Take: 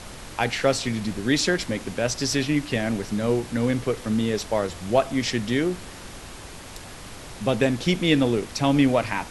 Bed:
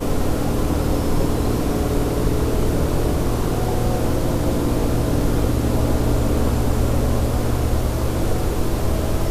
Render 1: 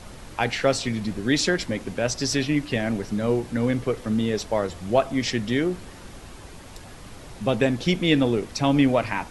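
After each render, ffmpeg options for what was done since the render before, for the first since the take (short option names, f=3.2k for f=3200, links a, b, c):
-af "afftdn=nr=6:nf=-40"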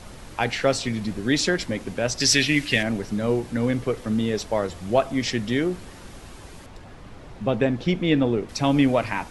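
-filter_complex "[0:a]asettb=1/sr,asplit=3[a][b][c];[a]atrim=end=2.204[d];[b]atrim=start=2.2:end=2.83,asetpts=PTS-STARTPTS,afade=t=in:d=0.004:c=qsin,afade=t=out:st=0.626:d=0.004:c=qsin,highshelf=f=1.5k:t=q:w=1.5:g=8[e];[c]atrim=start=2.826[f];[d][e]acrossfade=d=0.004:c1=hsin:c2=qsin[g];[g][f]acrossfade=d=0.004:c1=qsin:c2=hsin,asettb=1/sr,asplit=3[h][i][j];[h]atrim=end=6.664[k];[i]atrim=start=6.66:end=8.49,asetpts=PTS-STARTPTS,afade=t=in:d=0.004:c=qsin,afade=t=out:st=1.826:d=0.004:c=qsin,aemphasis=mode=reproduction:type=75kf[l];[j]atrim=start=8.486[m];[k][l]acrossfade=d=0.004:c1=hsin:c2=qsin[n];[n][m]acrossfade=d=0.004:c1=qsin:c2=hsin"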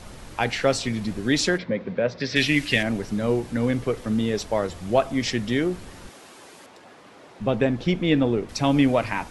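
-filter_complex "[0:a]asplit=3[a][b][c];[a]afade=t=out:st=1.57:d=0.02[d];[b]highpass=130,equalizer=f=180:t=q:w=4:g=6,equalizer=f=310:t=q:w=4:g=-5,equalizer=f=510:t=q:w=4:g=7,equalizer=f=780:t=q:w=4:g=-6,equalizer=f=1.3k:t=q:w=4:g=-3,equalizer=f=2.9k:t=q:w=4:g=-9,lowpass=f=3.4k:w=0.5412,lowpass=f=3.4k:w=1.3066,afade=t=in:st=1.57:d=0.02,afade=t=out:st=2.35:d=0.02[e];[c]afade=t=in:st=2.35:d=0.02[f];[d][e][f]amix=inputs=3:normalize=0,asettb=1/sr,asplit=3[g][h][i];[g]atrim=end=6.094[j];[h]atrim=start=6.09:end=7.4,asetpts=PTS-STARTPTS,afade=t=in:d=0.004:c=qsin,afade=t=out:st=1.306:d=0.004:c=qsin,highpass=310[k];[i]atrim=start=7.396[l];[j][k]acrossfade=d=0.004:c1=hsin:c2=qsin[m];[m][l]acrossfade=d=0.004:c1=qsin:c2=hsin"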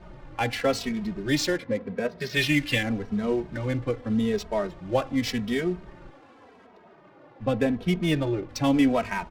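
-filter_complex "[0:a]adynamicsmooth=sensitivity=8:basefreq=1.3k,asplit=2[a][b];[b]adelay=2.8,afreqshift=-0.86[c];[a][c]amix=inputs=2:normalize=1"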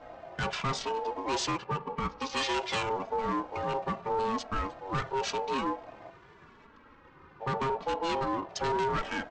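-af "aresample=16000,volume=24dB,asoftclip=hard,volume=-24dB,aresample=44100,aeval=exprs='val(0)*sin(2*PI*670*n/s)':c=same"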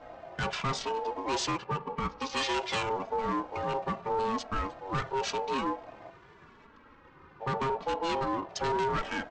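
-af anull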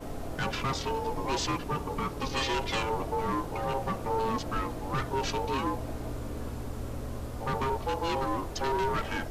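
-filter_complex "[1:a]volume=-18dB[a];[0:a][a]amix=inputs=2:normalize=0"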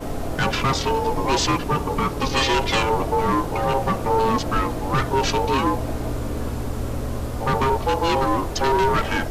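-af "volume=10dB"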